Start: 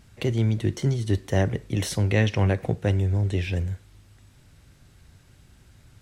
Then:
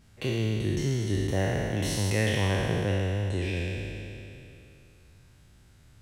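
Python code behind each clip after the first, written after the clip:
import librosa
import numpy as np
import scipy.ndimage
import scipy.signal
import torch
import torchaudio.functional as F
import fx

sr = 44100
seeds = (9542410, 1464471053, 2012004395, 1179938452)

y = fx.spec_trails(x, sr, decay_s=2.88)
y = y * 10.0 ** (-7.0 / 20.0)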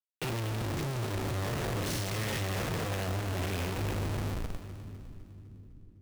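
y = fx.cheby_harmonics(x, sr, harmonics=(6,), levels_db=(-29,), full_scale_db=-13.0)
y = fx.schmitt(y, sr, flips_db=-40.5)
y = fx.echo_split(y, sr, split_hz=310.0, low_ms=663, high_ms=253, feedback_pct=52, wet_db=-11.0)
y = y * 10.0 ** (-3.5 / 20.0)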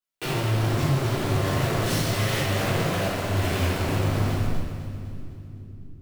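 y = fx.low_shelf(x, sr, hz=170.0, db=-6.0)
y = fx.room_shoebox(y, sr, seeds[0], volume_m3=280.0, walls='mixed', distance_m=3.0)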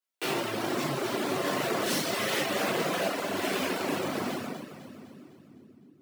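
y = fx.dereverb_blind(x, sr, rt60_s=0.67)
y = scipy.signal.sosfilt(scipy.signal.butter(4, 210.0, 'highpass', fs=sr, output='sos'), y)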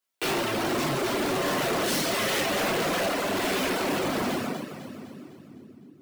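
y = np.clip(10.0 ** (29.5 / 20.0) * x, -1.0, 1.0) / 10.0 ** (29.5 / 20.0)
y = y * 10.0 ** (6.0 / 20.0)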